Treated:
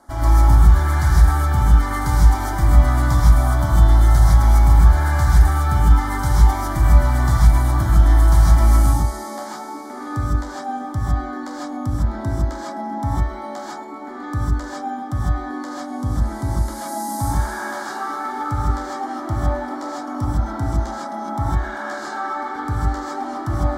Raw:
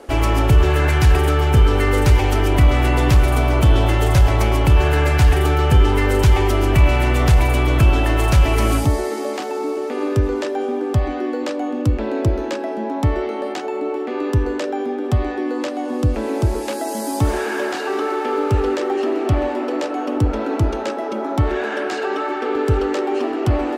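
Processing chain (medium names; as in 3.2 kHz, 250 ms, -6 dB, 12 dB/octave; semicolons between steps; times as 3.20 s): static phaser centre 1.1 kHz, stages 4; gated-style reverb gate 180 ms rising, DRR -6 dB; trim -6 dB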